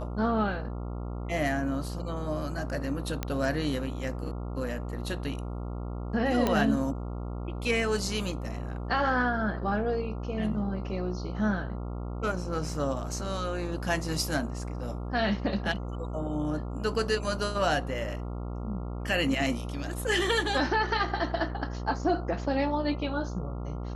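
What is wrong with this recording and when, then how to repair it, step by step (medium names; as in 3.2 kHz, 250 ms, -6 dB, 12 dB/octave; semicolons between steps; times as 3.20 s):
buzz 60 Hz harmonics 23 -35 dBFS
3.23 s: pop -15 dBFS
6.47 s: pop -12 dBFS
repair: de-click; de-hum 60 Hz, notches 23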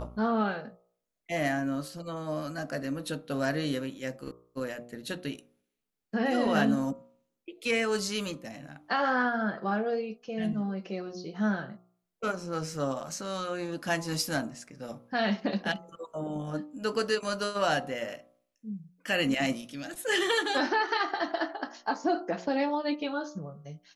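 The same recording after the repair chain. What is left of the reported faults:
nothing left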